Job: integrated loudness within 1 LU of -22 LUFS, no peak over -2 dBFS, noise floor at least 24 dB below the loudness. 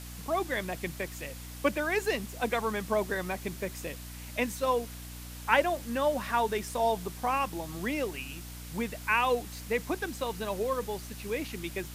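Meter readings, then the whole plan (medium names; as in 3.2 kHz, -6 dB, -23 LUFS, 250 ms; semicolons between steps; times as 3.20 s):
hum 60 Hz; highest harmonic 300 Hz; hum level -42 dBFS; noise floor -43 dBFS; noise floor target -56 dBFS; loudness -31.5 LUFS; peak level -8.0 dBFS; loudness target -22.0 LUFS
-> hum notches 60/120/180/240/300 Hz; noise reduction 13 dB, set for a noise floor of -43 dBFS; trim +9.5 dB; peak limiter -2 dBFS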